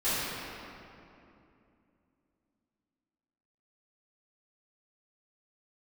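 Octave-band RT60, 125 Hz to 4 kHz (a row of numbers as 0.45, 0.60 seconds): 3.3, 3.6, 2.9, 2.6, 2.3, 1.7 seconds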